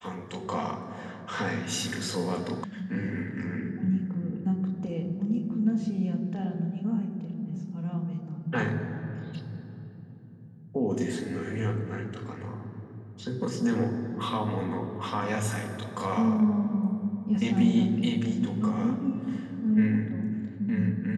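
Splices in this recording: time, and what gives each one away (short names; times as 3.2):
2.64 sound cut off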